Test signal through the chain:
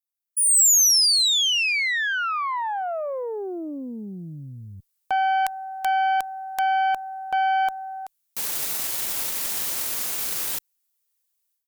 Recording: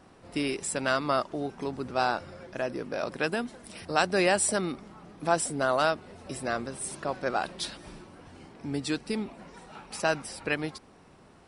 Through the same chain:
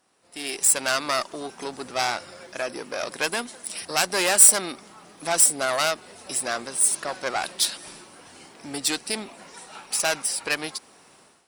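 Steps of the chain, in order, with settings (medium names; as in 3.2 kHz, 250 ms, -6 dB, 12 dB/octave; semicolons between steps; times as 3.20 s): valve stage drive 23 dB, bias 0.6; level rider gain up to 16 dB; RIAA curve recording; trim -9 dB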